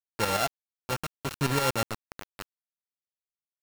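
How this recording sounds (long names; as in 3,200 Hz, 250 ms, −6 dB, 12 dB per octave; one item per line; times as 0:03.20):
a buzz of ramps at a fixed pitch in blocks of 32 samples
tremolo saw up 8.2 Hz, depth 70%
a quantiser's noise floor 6 bits, dither none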